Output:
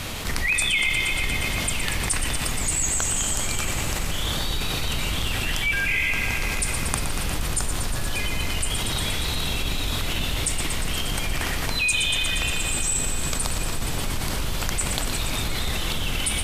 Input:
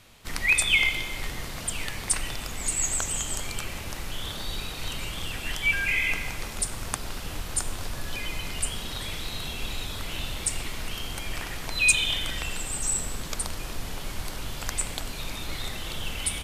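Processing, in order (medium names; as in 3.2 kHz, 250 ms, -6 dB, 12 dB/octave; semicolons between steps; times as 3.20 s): octave divider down 1 oct, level +1 dB; thinning echo 118 ms, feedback 80%, level -10.5 dB; level flattener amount 70%; trim -4.5 dB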